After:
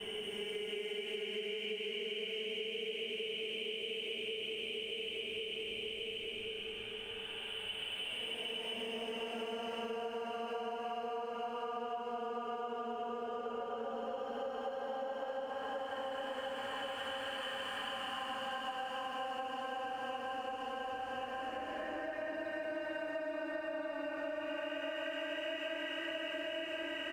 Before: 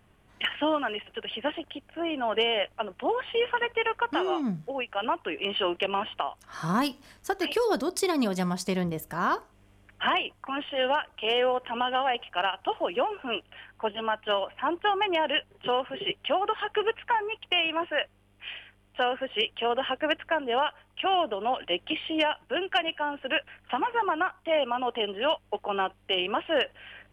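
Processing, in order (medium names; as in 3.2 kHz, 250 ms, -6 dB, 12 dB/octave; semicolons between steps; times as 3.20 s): local Wiener filter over 9 samples; Paulstretch 33×, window 0.10 s, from 19.34 s; feedback delay 1085 ms, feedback 46%, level -5.5 dB; expander -46 dBFS; on a send at -5.5 dB: reverberation RT60 0.25 s, pre-delay 5 ms; on the sum: compression 12:1, threshold -36 dBFS, peak gain reduction 19 dB; trim -1 dB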